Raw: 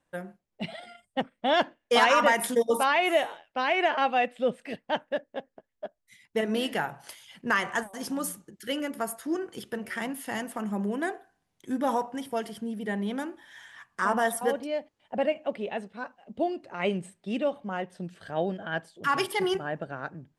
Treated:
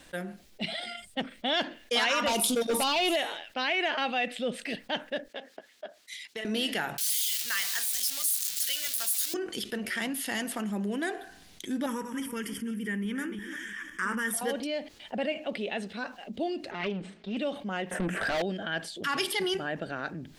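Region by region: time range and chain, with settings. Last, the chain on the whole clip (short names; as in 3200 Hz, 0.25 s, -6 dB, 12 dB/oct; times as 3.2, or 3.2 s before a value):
2.27–3.16 Butterworth band-stop 1800 Hz, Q 1.4 + sample leveller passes 2
5.28–6.45 weighting filter A + compressor 4:1, threshold -40 dBFS + three-band expander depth 40%
6.98–9.34 switching spikes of -23 dBFS + passive tone stack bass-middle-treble 10-0-10
11.86–14.34 regenerating reverse delay 0.17 s, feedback 40%, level -12 dB + fixed phaser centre 1700 Hz, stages 4
16.71–17.37 minimum comb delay 4.7 ms + HPF 220 Hz 6 dB/oct + tape spacing loss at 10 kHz 31 dB
17.91–18.42 Butterworth band-stop 4300 Hz, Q 0.66 + doubler 21 ms -14 dB + overdrive pedal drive 36 dB, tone 1600 Hz, clips at -16 dBFS
whole clip: ten-band EQ 125 Hz -10 dB, 500 Hz -4 dB, 1000 Hz -8 dB, 4000 Hz +6 dB; fast leveller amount 50%; gain -4 dB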